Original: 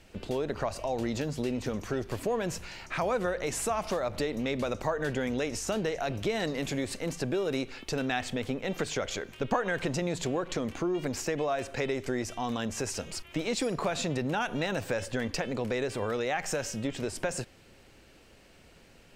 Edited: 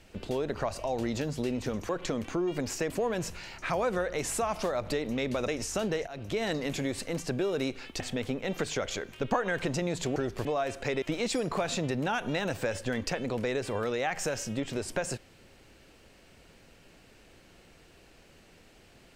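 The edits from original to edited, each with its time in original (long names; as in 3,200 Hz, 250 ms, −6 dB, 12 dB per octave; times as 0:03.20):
0:01.89–0:02.18: swap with 0:10.36–0:11.37
0:04.76–0:05.41: remove
0:06.00–0:06.35: fade in, from −15.5 dB
0:07.93–0:08.20: remove
0:11.94–0:13.29: remove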